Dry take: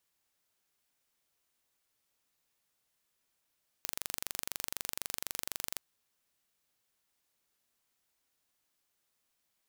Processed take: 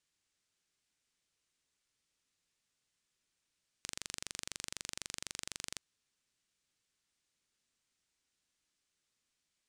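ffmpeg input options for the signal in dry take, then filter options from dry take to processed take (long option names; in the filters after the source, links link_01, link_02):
-f lavfi -i "aevalsrc='0.376*eq(mod(n,1838),0)':duration=1.93:sample_rate=44100"
-af "lowpass=frequency=8900:width=0.5412,lowpass=frequency=8900:width=1.3066,equalizer=frequency=770:width=0.88:gain=-8"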